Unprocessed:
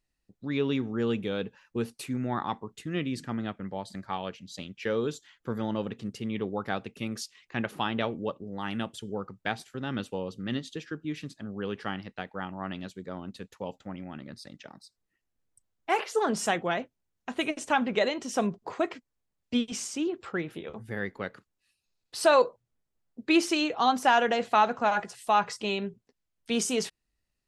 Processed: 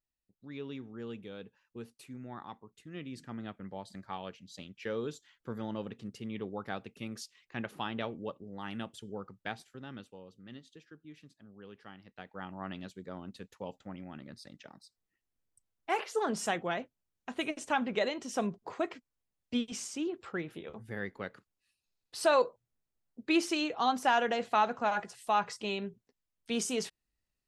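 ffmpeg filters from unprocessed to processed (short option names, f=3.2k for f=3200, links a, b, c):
-af "volume=5dB,afade=t=in:st=2.84:d=0.84:silence=0.446684,afade=t=out:st=9.41:d=0.73:silence=0.316228,afade=t=in:st=11.99:d=0.58:silence=0.251189"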